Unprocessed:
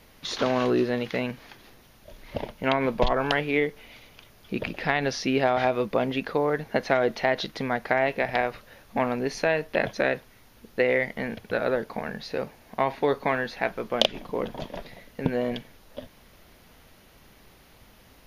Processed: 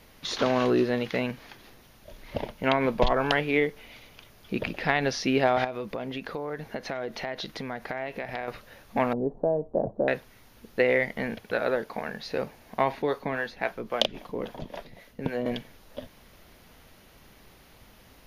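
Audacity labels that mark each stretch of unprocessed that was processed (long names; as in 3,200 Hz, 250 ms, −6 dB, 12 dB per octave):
5.640000	8.480000	downward compressor 3 to 1, threshold −32 dBFS
9.130000	10.080000	inverse Chebyshev low-pass filter stop band from 2,000 Hz, stop band 50 dB
11.370000	12.250000	low-shelf EQ 240 Hz −6.5 dB
13.020000	15.460000	two-band tremolo in antiphase 3.7 Hz, crossover 430 Hz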